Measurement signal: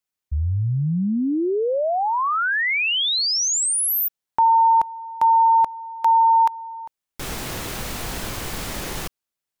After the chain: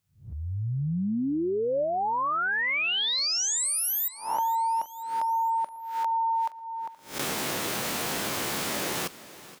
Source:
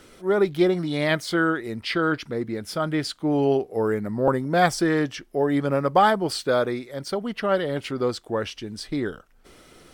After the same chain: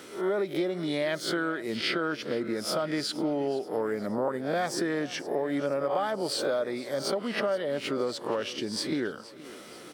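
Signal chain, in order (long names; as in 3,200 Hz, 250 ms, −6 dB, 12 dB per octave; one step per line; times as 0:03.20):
peak hold with a rise ahead of every peak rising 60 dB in 0.36 s
high-pass filter 190 Hz 12 dB per octave
dynamic equaliser 590 Hz, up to +8 dB, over −41 dBFS, Q 7.1
in parallel at −2 dB: brickwall limiter −14 dBFS
on the sum: downward compressor 5 to 1, threshold −25 dBFS
on a send: repeating echo 473 ms, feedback 52%, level −18 dB
on the sum: level −2 dB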